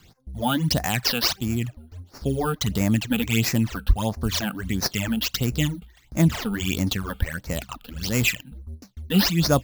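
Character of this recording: aliases and images of a low sample rate 10 kHz, jitter 0%; phasing stages 12, 1.5 Hz, lowest notch 100–3200 Hz

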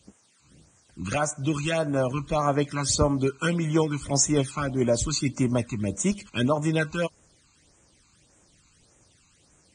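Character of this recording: a quantiser's noise floor 10-bit, dither triangular; phasing stages 12, 1.7 Hz, lowest notch 550–4400 Hz; Vorbis

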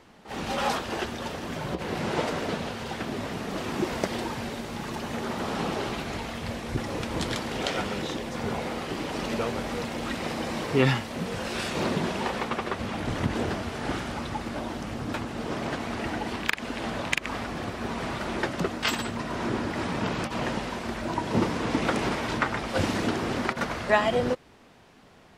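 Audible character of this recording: noise floor -47 dBFS; spectral tilt -5.0 dB/octave

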